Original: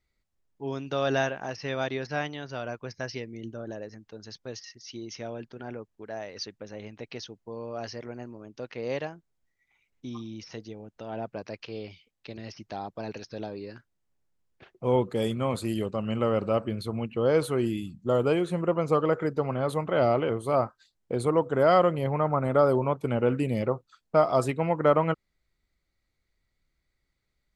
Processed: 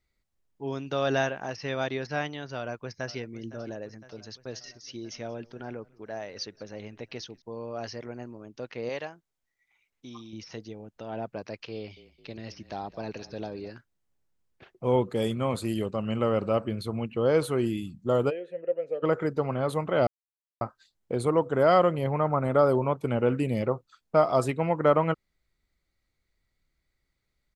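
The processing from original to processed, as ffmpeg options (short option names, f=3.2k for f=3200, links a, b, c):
-filter_complex "[0:a]asplit=2[a][b];[b]afade=t=in:st=2.56:d=0.01,afade=t=out:st=3.18:d=0.01,aecho=0:1:510|1020|1530|2040|2550|3060|3570|4080:0.149624|0.104736|0.0733155|0.0513209|0.0359246|0.0251472|0.0176031|0.0123221[c];[a][c]amix=inputs=2:normalize=0,asettb=1/sr,asplit=3[d][e][f];[d]atrim=end=4.274[g];[e]atrim=start=4.27:end=7.42,asetpts=PTS-STARTPTS,afade=t=in:d=0.004:c=qsin,afade=t=out:st=3.146:d=0.004:c=qsin,asplit=3[h][i][j];[i]adelay=182,afreqshift=-110,volume=-24dB[k];[j]adelay=364,afreqshift=-220,volume=-33.4dB[l];[h][k][l]amix=inputs=3:normalize=0,atrim=end_sample=138915[m];[f]atrim=start=7.416[n];[g][m]acrossfade=d=0.004:c1=hsin:c2=qsin[o];[o][n]acrossfade=d=0.004:c1=qsin:c2=hsin,asettb=1/sr,asplit=3[p][q][r];[p]atrim=end=8.894[s];[q]atrim=start=8.89:end=10.33,asetpts=PTS-STARTPTS,afade=t=in:d=0.004:c=qsin,afade=t=out:st=1.436:d=0.004:c=qsin,lowshelf=f=380:g=-9.5[t];[r]atrim=start=10.326[u];[s][t]acrossfade=d=0.004:c1=hsin:c2=qsin[v];[v][u]acrossfade=d=0.004:c1=qsin:c2=hsin,asettb=1/sr,asplit=3[w][x][y];[w]atrim=end=11.754[z];[x]atrim=start=11.75:end=13.7,asetpts=PTS-STARTPTS,afade=t=in:d=0.004:c=qsin,afade=t=out:st=1.946:d=0.004:c=qsin,asplit=6[aa][ab][ac][ad][ae][af];[ab]adelay=215,afreqshift=-30,volume=-17dB[ag];[ac]adelay=430,afreqshift=-60,volume=-22.7dB[ah];[ad]adelay=645,afreqshift=-90,volume=-28.4dB[ai];[ae]adelay=860,afreqshift=-120,volume=-34dB[aj];[af]adelay=1075,afreqshift=-150,volume=-39.7dB[ak];[aa][ag][ah][ai][aj][ak]amix=inputs=6:normalize=0,atrim=end_sample=85995[al];[y]atrim=start=13.696[am];[z][al]acrossfade=d=0.004:c1=hsin:c2=qsin[an];[an][am]acrossfade=d=0.004:c1=qsin:c2=hsin,asplit=3[ao][ap][aq];[ao]afade=t=out:st=18.29:d=0.02[ar];[ap]asplit=3[as][at][au];[as]bandpass=f=530:t=q:w=8,volume=0dB[av];[at]bandpass=f=1.84k:t=q:w=8,volume=-6dB[aw];[au]bandpass=f=2.48k:t=q:w=8,volume=-9dB[ax];[av][aw][ax]amix=inputs=3:normalize=0,afade=t=in:st=18.29:d=0.02,afade=t=out:st=19.02:d=0.02[ay];[aq]afade=t=in:st=19.02:d=0.02[az];[ar][ay][az]amix=inputs=3:normalize=0,asplit=3[ba][bb][bc];[ba]atrim=end=20.07,asetpts=PTS-STARTPTS,afade=t=out:st=20.066:d=0.004:c=hsin[bd];[bb]atrim=start=20.07:end=20.61,asetpts=PTS-STARTPTS,volume=0[be];[bc]atrim=start=20.61,asetpts=PTS-STARTPTS,afade=t=in:d=0.004:c=hsin[bf];[bd][be][bf]concat=n=3:v=0:a=1"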